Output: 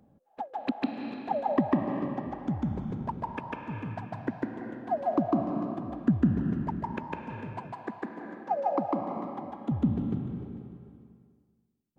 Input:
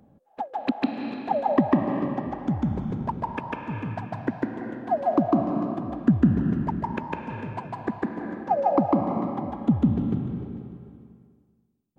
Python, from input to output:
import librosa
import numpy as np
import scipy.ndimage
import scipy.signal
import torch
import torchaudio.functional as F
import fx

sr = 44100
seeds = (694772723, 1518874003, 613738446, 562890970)

y = fx.highpass(x, sr, hz=350.0, slope=6, at=(7.72, 9.72))
y = y * librosa.db_to_amplitude(-5.0)